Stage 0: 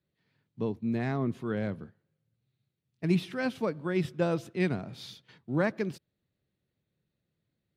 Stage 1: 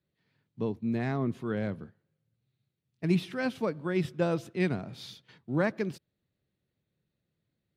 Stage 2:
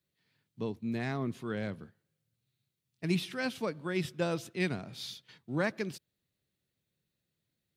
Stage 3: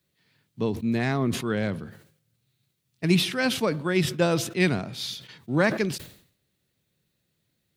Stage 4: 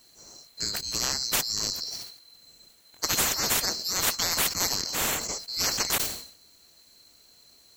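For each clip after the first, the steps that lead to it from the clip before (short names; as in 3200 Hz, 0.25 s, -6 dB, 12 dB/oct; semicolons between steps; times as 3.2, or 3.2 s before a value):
nothing audible
high shelf 2200 Hz +10.5 dB; gain -4.5 dB
sustainer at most 100 dB/s; gain +9 dB
band-swap scrambler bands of 4000 Hz; spectral compressor 4:1; gain -2 dB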